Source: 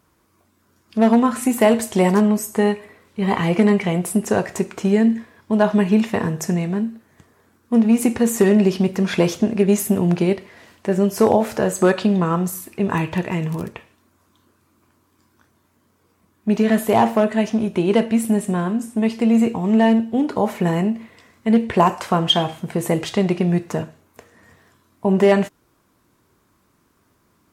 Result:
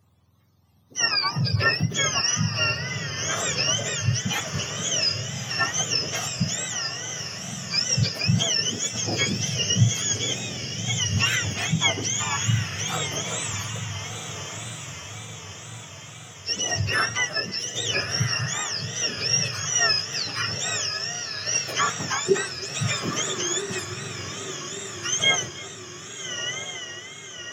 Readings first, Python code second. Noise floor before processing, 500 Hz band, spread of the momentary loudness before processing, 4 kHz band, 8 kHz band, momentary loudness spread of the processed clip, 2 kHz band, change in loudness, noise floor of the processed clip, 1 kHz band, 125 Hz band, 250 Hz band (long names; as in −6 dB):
−63 dBFS, −14.0 dB, 9 LU, +7.0 dB, +9.0 dB, 12 LU, +3.5 dB, −5.5 dB, −41 dBFS, −8.0 dB, −2.5 dB, −17.5 dB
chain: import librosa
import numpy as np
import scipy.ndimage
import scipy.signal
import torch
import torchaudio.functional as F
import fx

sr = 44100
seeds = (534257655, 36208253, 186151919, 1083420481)

y = fx.octave_mirror(x, sr, pivot_hz=1100.0)
y = fx.echo_diffused(y, sr, ms=1260, feedback_pct=54, wet_db=-7.0)
y = fx.wow_flutter(y, sr, seeds[0], rate_hz=2.1, depth_cents=110.0)
y = y + 10.0 ** (-20.5 / 20.0) * np.pad(y, (int(319 * sr / 1000.0), 0))[:len(y)]
y = y * librosa.db_to_amplitude(-4.0)